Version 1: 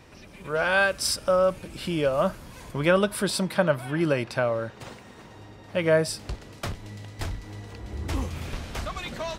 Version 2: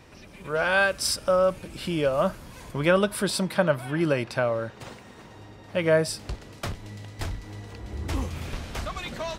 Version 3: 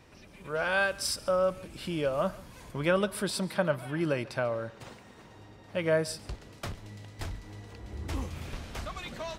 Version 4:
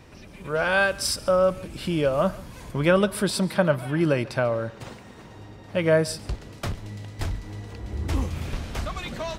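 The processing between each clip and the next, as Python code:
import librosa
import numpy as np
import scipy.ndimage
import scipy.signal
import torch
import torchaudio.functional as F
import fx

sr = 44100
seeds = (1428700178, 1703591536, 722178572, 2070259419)

y1 = x
y2 = y1 + 10.0 ** (-21.0 / 20.0) * np.pad(y1, (int(141 * sr / 1000.0), 0))[:len(y1)]
y2 = y2 * librosa.db_to_amplitude(-5.5)
y3 = fx.low_shelf(y2, sr, hz=340.0, db=4.0)
y3 = y3 * librosa.db_to_amplitude(5.5)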